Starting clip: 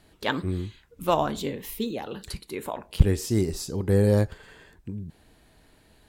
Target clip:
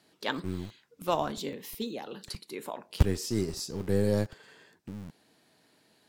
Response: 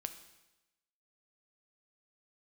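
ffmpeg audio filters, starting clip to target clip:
-filter_complex "[0:a]equalizer=f=5100:t=o:w=0.74:g=6,acrossover=split=130[s0][s1];[s0]acrusher=bits=4:dc=4:mix=0:aa=0.000001[s2];[s2][s1]amix=inputs=2:normalize=0,volume=0.531"

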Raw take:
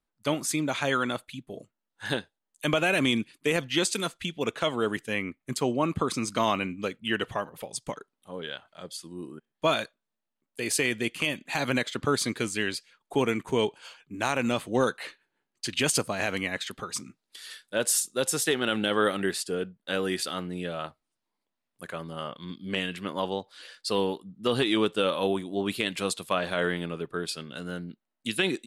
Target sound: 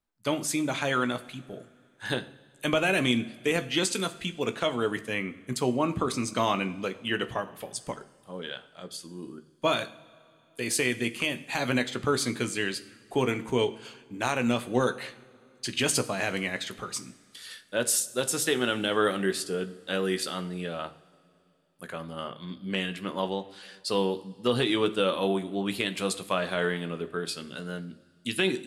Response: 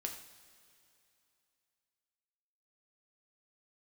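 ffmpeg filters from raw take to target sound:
-filter_complex "[0:a]asplit=2[s0][s1];[1:a]atrim=start_sample=2205,lowshelf=f=250:g=6.5,adelay=16[s2];[s1][s2]afir=irnorm=-1:irlink=0,volume=0.376[s3];[s0][s3]amix=inputs=2:normalize=0,volume=0.891"

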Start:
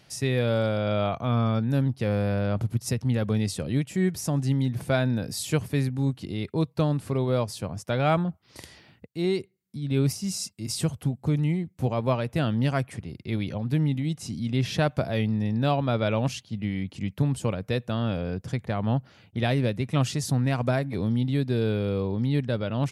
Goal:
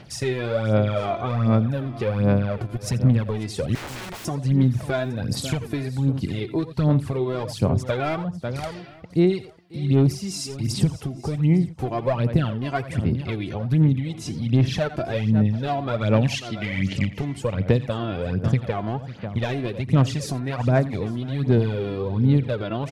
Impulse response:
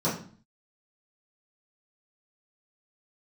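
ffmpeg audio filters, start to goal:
-filter_complex "[0:a]asettb=1/sr,asplit=3[s0][s1][s2];[s0]atrim=end=16.164[s3];[s1]atrim=start=16.16:end=17.05,asetpts=PTS-STARTPTS,afade=t=in:d=0.004:c=qsin,afade=t=out:st=0.886:d=0.004:c=qsin,highshelf=f=1500:t=q:w=3:g=6[s4];[s2]atrim=start=17.046[s5];[s3][s4]acrossfade=d=0.004:c1=hsin:c2=qsin[s6];[s6][s5]acrossfade=d=0.004:c1=qsin:c2=hsin,volume=7.94,asoftclip=hard,volume=0.126,asplit=2[s7][s8];[s8]aecho=0:1:84|544:0.168|0.158[s9];[s7][s9]amix=inputs=2:normalize=0,acompressor=threshold=0.0398:ratio=8,aphaser=in_gain=1:out_gain=1:delay=3:decay=0.64:speed=1.3:type=sinusoidal,asettb=1/sr,asplit=3[s10][s11][s12];[s10]atrim=end=3.754[s13];[s11]atrim=start=3.75:end=4.25,asetpts=PTS-STARTPTS,afade=t=in:d=0.004:c=qsin,afade=t=out:st=0.496:d=0.004:c=qsin,aeval=exprs='(mod(53.1*val(0)+1,2)-1)/53.1':c=same[s14];[s12]atrim=start=4.246[s15];[s13][s14]acrossfade=d=0.004:c1=hsin:c2=qsin[s16];[s16][s15]acrossfade=d=0.004:c1=qsin:c2=hsin,lowpass=f=3600:p=1,asplit=2[s17][s18];[s18]aecho=0:1:855:0.0708[s19];[s17][s19]amix=inputs=2:normalize=0,volume=2"

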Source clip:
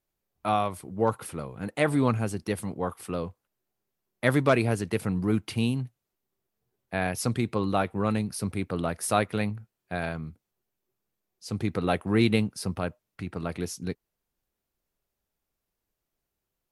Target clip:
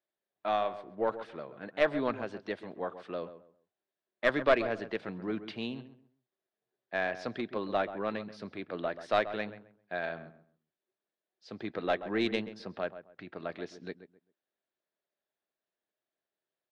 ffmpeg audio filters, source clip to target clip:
-filter_complex "[0:a]highpass=250,equalizer=f=360:t=q:w=4:g=3,equalizer=f=620:t=q:w=4:g=8,equalizer=f=1700:t=q:w=4:g=8,equalizer=f=3600:t=q:w=4:g=5,lowpass=f=4500:w=0.5412,lowpass=f=4500:w=1.3066,aeval=exprs='0.631*(cos(1*acos(clip(val(0)/0.631,-1,1)))-cos(1*PI/2))+0.158*(cos(2*acos(clip(val(0)/0.631,-1,1)))-cos(2*PI/2))+0.00708*(cos(6*acos(clip(val(0)/0.631,-1,1)))-cos(6*PI/2))+0.00891*(cos(7*acos(clip(val(0)/0.631,-1,1)))-cos(7*PI/2))+0.0112*(cos(8*acos(clip(val(0)/0.631,-1,1)))-cos(8*PI/2))':c=same,asplit=2[s0][s1];[s1]adelay=132,lowpass=f=1600:p=1,volume=0.251,asplit=2[s2][s3];[s3]adelay=132,lowpass=f=1600:p=1,volume=0.26,asplit=2[s4][s5];[s5]adelay=132,lowpass=f=1600:p=1,volume=0.26[s6];[s0][s2][s4][s6]amix=inputs=4:normalize=0,volume=0.447"

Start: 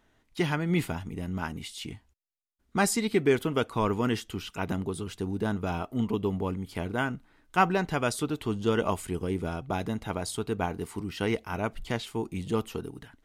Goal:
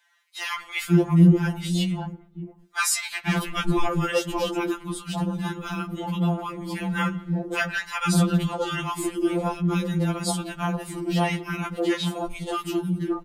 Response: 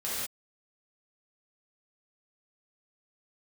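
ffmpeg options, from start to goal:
-filter_complex "[0:a]asettb=1/sr,asplit=3[s0][s1][s2];[s0]atrim=end=2.964[s3];[s1]atrim=start=2.96:end=3.47,asetpts=PTS-STARTPTS,afade=t=in:d=0.004:c=qsin,afade=t=out:st=0.506:d=0.004:c=qsin,aeval=exprs='clip(val(0),-1,0.0422)':c=same[s4];[s2]atrim=start=3.466[s5];[s3][s4]acrossfade=d=0.004:c1=hsin:c2=qsin[s6];[s6][s5]acrossfade=d=0.004:c1=qsin:c2=hsin,acrossover=split=290|950[s7][s8][s9];[s7]adelay=520[s10];[s8]adelay=580[s11];[s10][s11][s9]amix=inputs=3:normalize=0,asplit=2[s12][s13];[1:a]atrim=start_sample=2205,asetrate=38808,aresample=44100,lowpass=4300[s14];[s13][s14]afir=irnorm=-1:irlink=0,volume=0.0501[s15];[s12][s15]amix=inputs=2:normalize=0,afftfilt=real='re*2.83*eq(mod(b,8),0)':imag='im*2.83*eq(mod(b,8),0)':win_size=2048:overlap=0.75,volume=2.82"

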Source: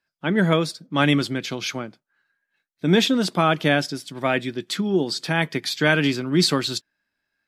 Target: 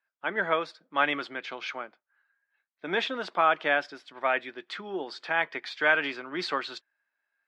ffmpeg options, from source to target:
-af "highpass=750,lowpass=2000"

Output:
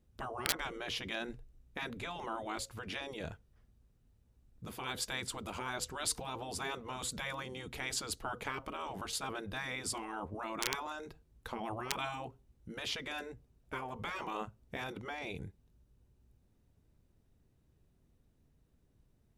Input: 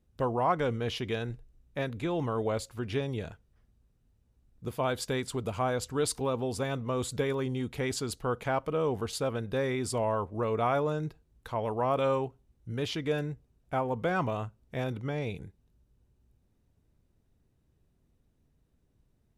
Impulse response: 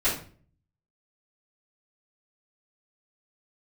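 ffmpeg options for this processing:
-af "aeval=exprs='(mod(7.08*val(0)+1,2)-1)/7.08':c=same,afftfilt=real='re*lt(hypot(re,im),0.0891)':imag='im*lt(hypot(re,im),0.0891)':win_size=1024:overlap=0.75"

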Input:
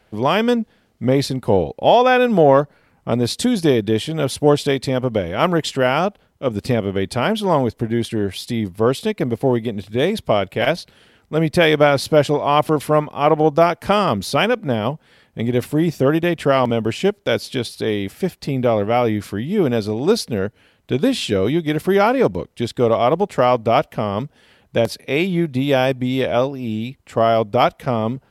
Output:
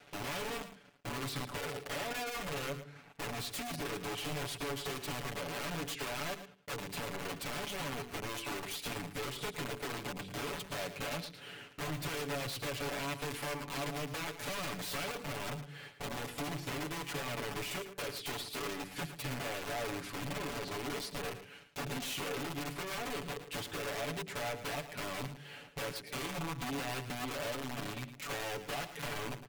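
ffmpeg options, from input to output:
-af "highpass=110,alimiter=limit=0.355:level=0:latency=1:release=293,volume=18.8,asoftclip=hard,volume=0.0531,bandreject=f=50:t=h:w=6,bandreject=f=100:t=h:w=6,bandreject=f=150:t=h:w=6,bandreject=f=200:t=h:w=6,bandreject=f=250:t=h:w=6,bandreject=f=300:t=h:w=6,bandreject=f=350:t=h:w=6,bandreject=f=400:t=h:w=6,bandreject=f=450:t=h:w=6,bandreject=f=500:t=h:w=6,acrusher=bits=8:mix=0:aa=0.5,highshelf=f=5900:g=-6,acompressor=threshold=0.00794:ratio=5,aeval=exprs='(mod(79.4*val(0)+1,2)-1)/79.4':c=same,equalizer=f=2600:w=1.8:g=3,aecho=1:1:6.7:0.87,asetrate=42336,aresample=44100,aecho=1:1:111:0.266"

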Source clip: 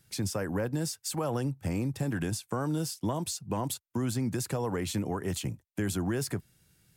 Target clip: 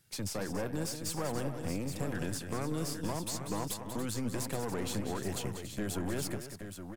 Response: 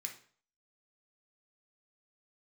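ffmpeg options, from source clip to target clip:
-filter_complex "[0:a]lowshelf=f=220:g=-4,aeval=exprs='(tanh(28.2*val(0)+0.6)-tanh(0.6))/28.2':c=same,asplit=2[s0][s1];[s1]aecho=0:1:190|284|822:0.335|0.266|0.376[s2];[s0][s2]amix=inputs=2:normalize=0"

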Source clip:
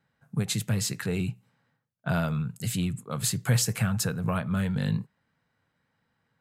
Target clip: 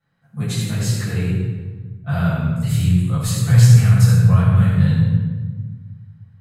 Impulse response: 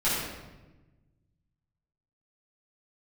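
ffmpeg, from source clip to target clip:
-filter_complex "[0:a]asubboost=boost=7.5:cutoff=100[s0];[1:a]atrim=start_sample=2205,asetrate=35280,aresample=44100[s1];[s0][s1]afir=irnorm=-1:irlink=0,volume=0.376"

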